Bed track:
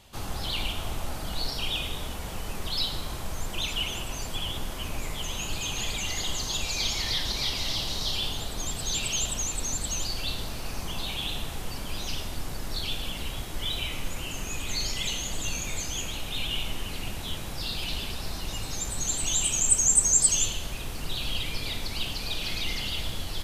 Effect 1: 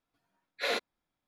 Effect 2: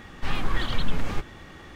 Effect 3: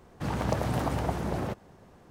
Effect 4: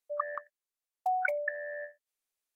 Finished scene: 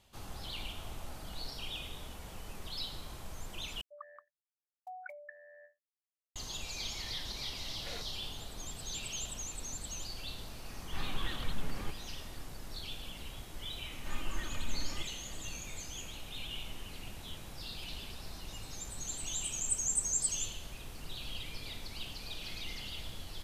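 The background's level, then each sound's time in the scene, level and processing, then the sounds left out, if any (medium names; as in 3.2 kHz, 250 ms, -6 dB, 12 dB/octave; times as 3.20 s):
bed track -11.5 dB
3.81 s: replace with 4 -17 dB
7.23 s: add 1 -16 dB
10.70 s: add 2 -11.5 dB
13.82 s: add 2 -15 dB + comb 3.3 ms, depth 56%
not used: 3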